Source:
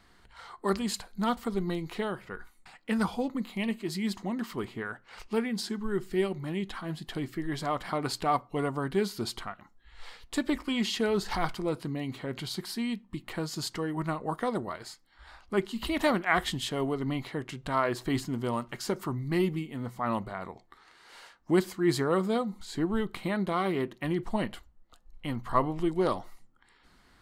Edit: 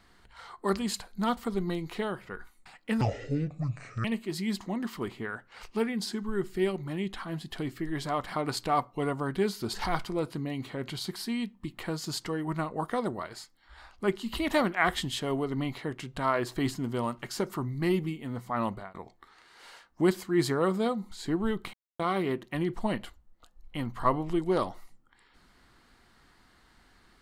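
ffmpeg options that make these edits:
-filter_complex "[0:a]asplit=7[s0][s1][s2][s3][s4][s5][s6];[s0]atrim=end=3.014[s7];[s1]atrim=start=3.01:end=3.61,asetpts=PTS-STARTPTS,asetrate=25578,aresample=44100[s8];[s2]atrim=start=3.606:end=9.302[s9];[s3]atrim=start=11.228:end=20.44,asetpts=PTS-STARTPTS,afade=t=out:st=8.962:d=0.25:c=qsin[s10];[s4]atrim=start=20.44:end=23.23,asetpts=PTS-STARTPTS,afade=t=in:d=0.004:c=hsin,afade=t=out:st=2.786:d=0.004:c=hsin[s11];[s5]atrim=start=23.23:end=23.49,asetpts=PTS-STARTPTS,volume=0[s12];[s6]atrim=start=23.49,asetpts=PTS-STARTPTS,afade=t=in:d=0.004:c=hsin[s13];[s7][s8]acrossfade=d=0.004:c1=hsin:c2=hsin[s14];[s14][s9]acrossfade=d=0.004:c1=hsin:c2=hsin[s15];[s10][s11][s12][s13]concat=n=4:v=0:a=1[s16];[s15][s16]acrossfade=d=0.004:c1=hsin:c2=hsin"

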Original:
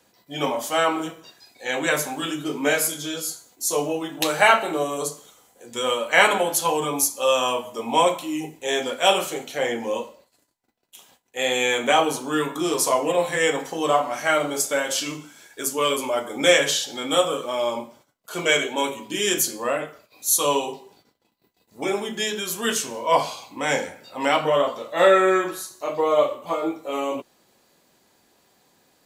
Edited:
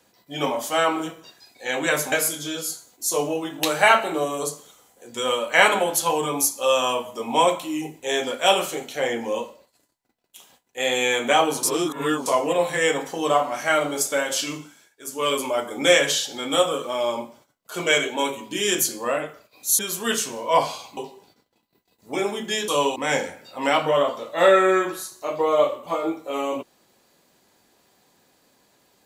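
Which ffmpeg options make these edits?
-filter_complex "[0:a]asplit=9[s0][s1][s2][s3][s4][s5][s6][s7][s8];[s0]atrim=end=2.122[s9];[s1]atrim=start=2.708:end=12.222[s10];[s2]atrim=start=12.218:end=12.852,asetpts=PTS-STARTPTS,areverse[s11];[s3]atrim=start=12.848:end=15.55,asetpts=PTS-STARTPTS,afade=t=out:st=2.342:d=0.36:silence=0.0841395[s12];[s4]atrim=start=15.55:end=20.382,asetpts=PTS-STARTPTS,afade=t=in:d=0.36:silence=0.0841395[s13];[s5]atrim=start=22.368:end=23.552[s14];[s6]atrim=start=20.658:end=22.372[s15];[s7]atrim=start=20.378:end=20.662[s16];[s8]atrim=start=23.548[s17];[s9][s10]acrossfade=d=0.004:c1=hsin:c2=hsin[s18];[s18][s11]acrossfade=d=0.004:c1=hsin:c2=hsin[s19];[s12][s13]concat=n=2:v=0:a=1[s20];[s19][s20]acrossfade=d=0.004:c1=hsin:c2=hsin[s21];[s21][s14]acrossfade=d=0.004:c1=hsin:c2=hsin[s22];[s22][s15]acrossfade=d=0.004:c1=hsin:c2=hsin[s23];[s23][s16]acrossfade=d=0.004:c1=hsin:c2=hsin[s24];[s24][s17]acrossfade=d=0.004:c1=hsin:c2=hsin"

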